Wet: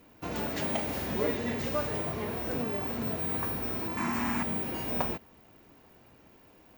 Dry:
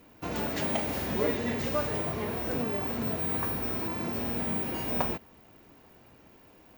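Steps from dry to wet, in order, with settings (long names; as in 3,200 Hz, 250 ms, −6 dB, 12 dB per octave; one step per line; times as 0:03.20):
0:03.97–0:04.43: octave-band graphic EQ 125/250/500/1,000/2,000/4,000/8,000 Hz −3/+8/−12/+12/+9/−3/+11 dB
level −1.5 dB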